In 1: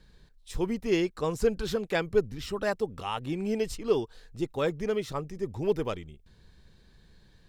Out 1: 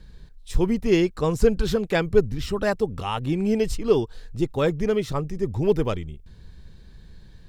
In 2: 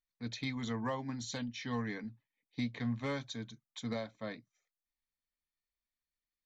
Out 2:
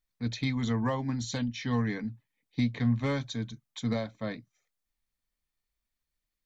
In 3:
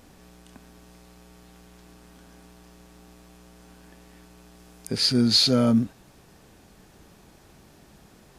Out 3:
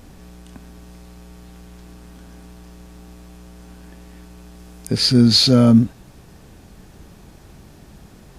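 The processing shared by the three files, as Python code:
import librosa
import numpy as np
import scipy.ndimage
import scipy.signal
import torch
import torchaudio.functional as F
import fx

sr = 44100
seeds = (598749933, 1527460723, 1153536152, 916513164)

y = fx.low_shelf(x, sr, hz=190.0, db=9.0)
y = y * 10.0 ** (4.5 / 20.0)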